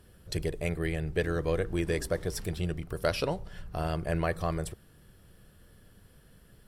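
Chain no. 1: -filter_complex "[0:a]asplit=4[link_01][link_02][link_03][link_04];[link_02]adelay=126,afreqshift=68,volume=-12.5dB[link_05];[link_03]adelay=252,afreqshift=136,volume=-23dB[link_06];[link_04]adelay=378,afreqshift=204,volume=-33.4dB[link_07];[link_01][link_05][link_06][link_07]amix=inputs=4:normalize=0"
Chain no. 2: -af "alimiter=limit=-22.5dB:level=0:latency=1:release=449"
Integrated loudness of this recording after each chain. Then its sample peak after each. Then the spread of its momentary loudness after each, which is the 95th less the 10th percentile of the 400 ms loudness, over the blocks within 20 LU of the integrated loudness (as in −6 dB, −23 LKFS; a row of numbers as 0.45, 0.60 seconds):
−32.0, −36.0 LKFS; −14.5, −22.5 dBFS; 7, 5 LU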